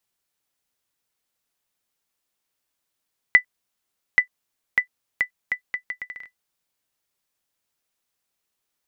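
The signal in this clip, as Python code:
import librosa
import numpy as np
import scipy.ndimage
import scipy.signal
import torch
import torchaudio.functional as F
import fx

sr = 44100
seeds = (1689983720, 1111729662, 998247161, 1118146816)

y = fx.bouncing_ball(sr, first_gap_s=0.83, ratio=0.72, hz=1990.0, decay_ms=97.0, level_db=-2.5)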